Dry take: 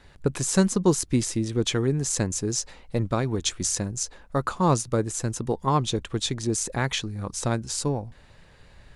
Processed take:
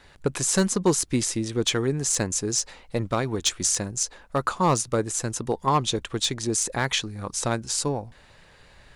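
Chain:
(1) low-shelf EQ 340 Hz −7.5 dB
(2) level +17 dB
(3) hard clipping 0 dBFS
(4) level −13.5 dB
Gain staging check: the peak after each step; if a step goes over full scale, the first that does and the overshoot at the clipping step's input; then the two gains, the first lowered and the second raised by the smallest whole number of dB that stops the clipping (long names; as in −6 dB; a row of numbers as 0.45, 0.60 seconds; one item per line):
−7.0, +10.0, 0.0, −13.5 dBFS
step 2, 10.0 dB
step 2 +7 dB, step 4 −3.5 dB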